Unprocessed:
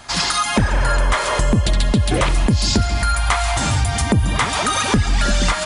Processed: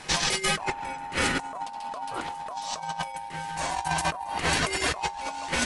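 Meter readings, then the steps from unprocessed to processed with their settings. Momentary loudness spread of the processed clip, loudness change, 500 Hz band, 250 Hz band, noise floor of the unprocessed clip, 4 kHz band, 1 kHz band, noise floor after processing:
10 LU, -11.0 dB, -11.0 dB, -15.0 dB, -23 dBFS, -8.5 dB, -7.0 dB, -39 dBFS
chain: resonator 54 Hz, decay 0.25 s, harmonics odd, mix 60%; negative-ratio compressor -26 dBFS, ratio -0.5; ring modulator 860 Hz

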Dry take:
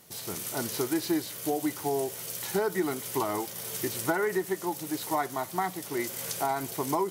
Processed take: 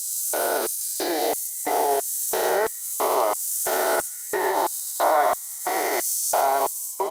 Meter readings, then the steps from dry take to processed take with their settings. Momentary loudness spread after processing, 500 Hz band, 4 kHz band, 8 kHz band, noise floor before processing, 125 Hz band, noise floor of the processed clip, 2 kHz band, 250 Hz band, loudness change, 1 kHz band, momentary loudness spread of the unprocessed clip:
5 LU, +7.0 dB, +5.5 dB, +11.0 dB, -42 dBFS, under -15 dB, -35 dBFS, +6.5 dB, -3.0 dB, +7.5 dB, +9.5 dB, 5 LU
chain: spectral swells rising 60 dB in 2.87 s; limiter -18.5 dBFS, peak gain reduction 7 dB; on a send: feedback echo 0.126 s, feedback 29%, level -10 dB; on the sum: LFO high-pass square 1.5 Hz 580–7500 Hz; gain +4 dB; Opus 48 kbps 48000 Hz

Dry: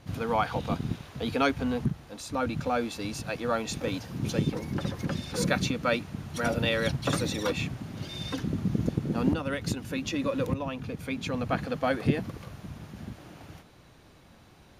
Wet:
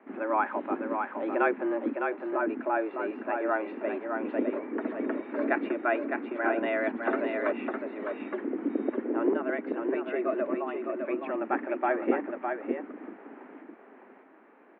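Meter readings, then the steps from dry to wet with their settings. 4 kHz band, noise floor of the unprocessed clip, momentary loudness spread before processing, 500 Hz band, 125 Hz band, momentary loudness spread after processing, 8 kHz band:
under -15 dB, -55 dBFS, 12 LU, +2.5 dB, under -25 dB, 7 LU, under -40 dB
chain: on a send: echo 0.608 s -5 dB; on the sum: mistuned SSB +98 Hz 160–2100 Hz

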